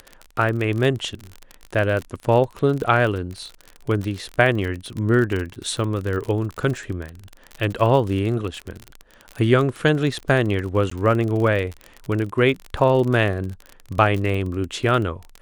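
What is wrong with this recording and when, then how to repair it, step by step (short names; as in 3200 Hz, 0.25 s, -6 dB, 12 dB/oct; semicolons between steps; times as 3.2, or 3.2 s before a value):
crackle 37/s -25 dBFS
10.9–10.91 gap 14 ms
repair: de-click; interpolate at 10.9, 14 ms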